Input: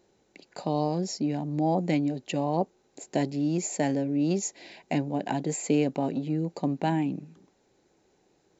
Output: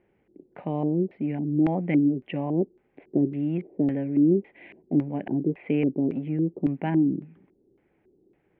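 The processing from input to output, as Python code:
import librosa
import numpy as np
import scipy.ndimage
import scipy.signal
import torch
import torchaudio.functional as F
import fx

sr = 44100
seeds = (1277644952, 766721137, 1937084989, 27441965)

y = scipy.signal.sosfilt(scipy.signal.cheby1(5, 1.0, 3300.0, 'lowpass', fs=sr, output='sos'), x)
y = fx.filter_lfo_lowpass(y, sr, shape='square', hz=1.8, low_hz=360.0, high_hz=2200.0, q=3.0)
y = fx.low_shelf(y, sr, hz=460.0, db=8.0)
y = y * librosa.db_to_amplitude(-6.0)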